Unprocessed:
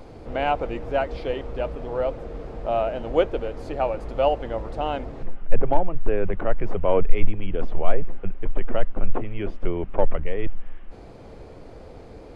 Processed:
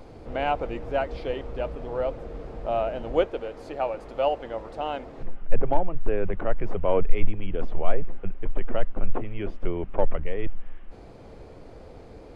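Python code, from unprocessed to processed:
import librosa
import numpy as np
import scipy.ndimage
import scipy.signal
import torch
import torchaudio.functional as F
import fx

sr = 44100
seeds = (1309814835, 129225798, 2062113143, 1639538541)

y = fx.low_shelf(x, sr, hz=170.0, db=-11.5, at=(3.24, 5.18))
y = y * librosa.db_to_amplitude(-2.5)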